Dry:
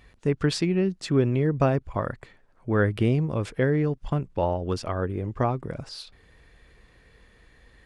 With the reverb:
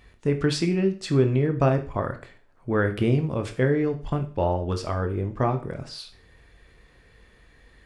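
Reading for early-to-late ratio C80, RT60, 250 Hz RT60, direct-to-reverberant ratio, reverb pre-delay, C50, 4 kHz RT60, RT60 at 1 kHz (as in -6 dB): 17.5 dB, 0.40 s, 0.40 s, 6.0 dB, 19 ms, 12.5 dB, 0.40 s, 0.40 s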